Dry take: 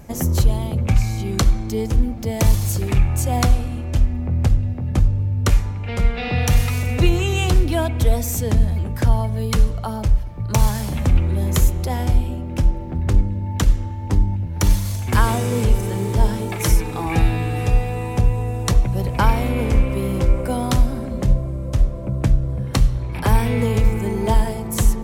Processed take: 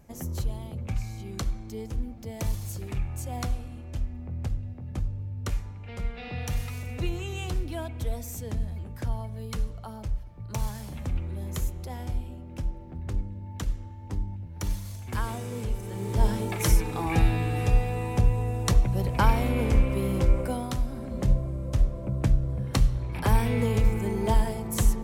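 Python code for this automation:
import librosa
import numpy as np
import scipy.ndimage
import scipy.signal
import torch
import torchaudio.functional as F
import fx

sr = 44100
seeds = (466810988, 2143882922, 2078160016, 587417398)

y = fx.gain(x, sr, db=fx.line((15.82, -14.0), (16.28, -5.0), (20.41, -5.0), (20.76, -13.0), (21.24, -6.0)))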